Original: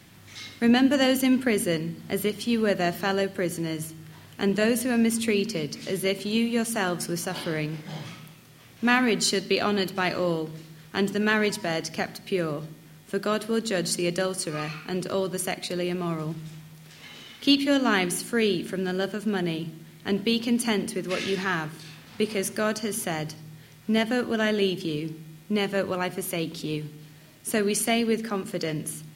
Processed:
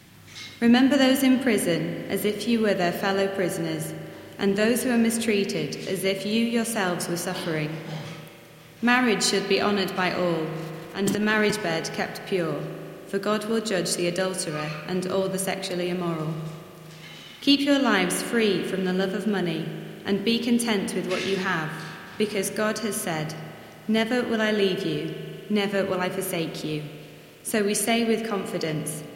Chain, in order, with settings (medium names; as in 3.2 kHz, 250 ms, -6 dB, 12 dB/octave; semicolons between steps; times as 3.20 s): 10.57–11.51 s: transient shaper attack -7 dB, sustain +10 dB; spring tank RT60 3.2 s, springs 38 ms, chirp 65 ms, DRR 7.5 dB; trim +1 dB